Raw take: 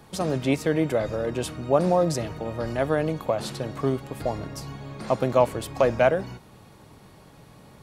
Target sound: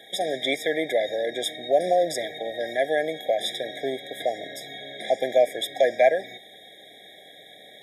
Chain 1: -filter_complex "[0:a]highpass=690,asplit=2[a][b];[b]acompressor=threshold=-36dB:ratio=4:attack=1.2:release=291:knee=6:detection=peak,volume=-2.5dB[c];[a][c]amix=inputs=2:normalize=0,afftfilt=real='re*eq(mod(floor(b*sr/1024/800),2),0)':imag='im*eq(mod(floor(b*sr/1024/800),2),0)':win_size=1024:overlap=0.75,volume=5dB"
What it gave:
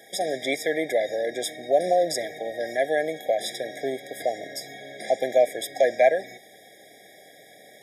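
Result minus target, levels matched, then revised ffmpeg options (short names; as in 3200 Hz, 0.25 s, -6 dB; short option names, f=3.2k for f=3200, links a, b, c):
4000 Hz band -4.5 dB
-filter_complex "[0:a]highpass=690,asplit=2[a][b];[b]acompressor=threshold=-36dB:ratio=4:attack=1.2:release=291:knee=6:detection=peak,lowpass=f=3.7k:t=q:w=8.1,volume=-2.5dB[c];[a][c]amix=inputs=2:normalize=0,afftfilt=real='re*eq(mod(floor(b*sr/1024/800),2),0)':imag='im*eq(mod(floor(b*sr/1024/800),2),0)':win_size=1024:overlap=0.75,volume=5dB"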